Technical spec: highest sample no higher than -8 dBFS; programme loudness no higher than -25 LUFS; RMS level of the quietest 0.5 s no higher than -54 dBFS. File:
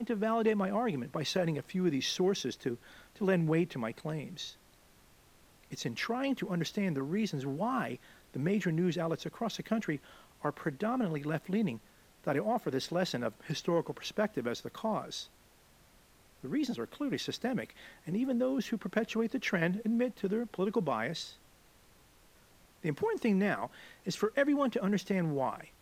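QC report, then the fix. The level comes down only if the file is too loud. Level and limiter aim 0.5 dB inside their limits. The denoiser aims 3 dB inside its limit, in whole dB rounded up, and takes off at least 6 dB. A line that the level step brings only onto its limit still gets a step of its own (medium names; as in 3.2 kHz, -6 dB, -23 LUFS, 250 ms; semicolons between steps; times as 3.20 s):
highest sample -15.0 dBFS: pass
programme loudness -33.5 LUFS: pass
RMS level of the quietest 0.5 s -63 dBFS: pass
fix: none needed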